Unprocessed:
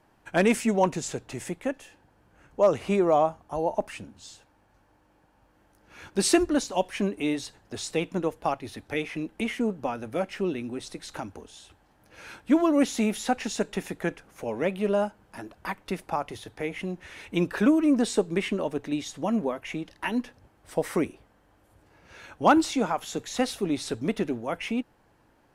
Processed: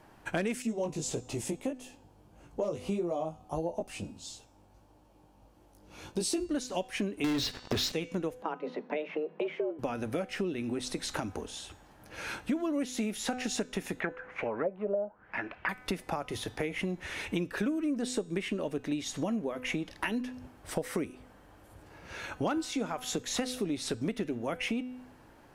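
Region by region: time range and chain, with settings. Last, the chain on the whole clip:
0.62–6.51 s: peaking EQ 1.7 kHz -12.5 dB 0.94 oct + chorus 1.6 Hz, delay 17 ms, depth 3.3 ms
7.24–7.92 s: low-pass 5 kHz 24 dB/octave + waveshaping leveller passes 5
8.42–9.79 s: frequency shift +150 Hz + tape spacing loss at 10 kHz 40 dB
14.00–15.69 s: bass shelf 440 Hz -8 dB + touch-sensitive low-pass 560–2900 Hz down, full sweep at -24.5 dBFS
whole clip: de-hum 251.8 Hz, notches 35; dynamic bell 900 Hz, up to -6 dB, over -41 dBFS, Q 1.6; compression 6:1, threshold -36 dBFS; trim +6 dB

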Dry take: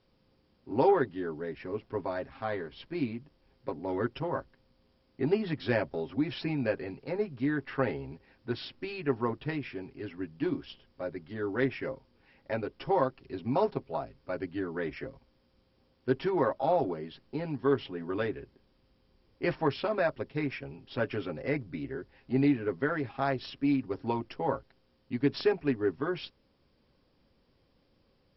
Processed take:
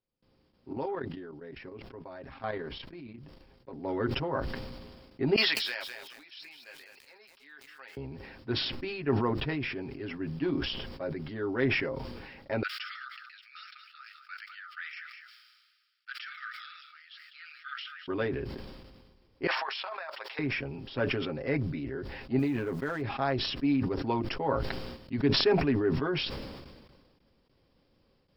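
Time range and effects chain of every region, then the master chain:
0.73–3.73 s: square tremolo 1.2 Hz, depth 60%, duty 15% + level held to a coarse grid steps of 11 dB
5.36–7.97 s: high-pass 860 Hz 6 dB/octave + differentiator + bit-crushed delay 206 ms, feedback 35%, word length 10-bit, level -5 dB
12.63–18.08 s: brick-wall FIR high-pass 1.2 kHz + delay 205 ms -15 dB
19.47–20.39 s: high-pass 800 Hz 24 dB/octave + compressor with a negative ratio -38 dBFS, ratio -0.5
22.39–23.02 s: companding laws mixed up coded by A + compression 2:1, threshold -31 dBFS
whole clip: gate with hold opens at -59 dBFS; decay stretcher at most 36 dB/s

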